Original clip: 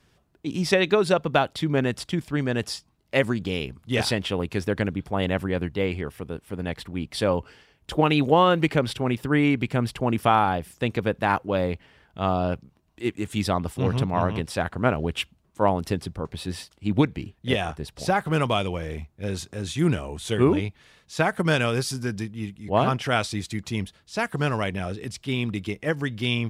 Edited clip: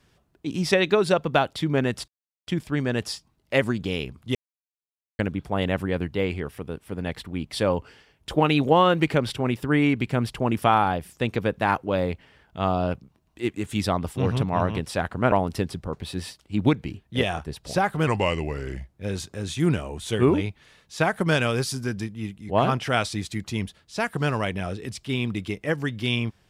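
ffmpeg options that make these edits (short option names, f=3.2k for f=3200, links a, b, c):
-filter_complex "[0:a]asplit=7[a][b][c][d][e][f][g];[a]atrim=end=2.08,asetpts=PTS-STARTPTS,afade=t=out:st=2.076:d=0.004:c=hsin,apad=pad_dur=0.39[h];[b]atrim=start=2.08:end=3.96,asetpts=PTS-STARTPTS,afade=t=in:d=0.004:c=hsin,afade=t=out:st=1.876:d=0.004:c=hsin[i];[c]atrim=start=3.96:end=4.8,asetpts=PTS-STARTPTS,volume=0[j];[d]atrim=start=4.8:end=14.932,asetpts=PTS-STARTPTS,afade=t=in:d=0.004:c=hsin[k];[e]atrim=start=15.638:end=18.394[l];[f]atrim=start=18.39:end=19.13,asetpts=PTS-STARTPTS,asetrate=37485,aresample=44100[m];[g]atrim=start=19.126[n];[h][i][j][k]concat=n=4:v=0:a=1[o];[o][l]acrossfade=d=0.004:c1=hsin:c2=hsin[p];[p][m]acrossfade=d=0.004:c1=hsin:c2=hsin[q];[q][n]acrossfade=d=0.004:c1=hsin:c2=hsin"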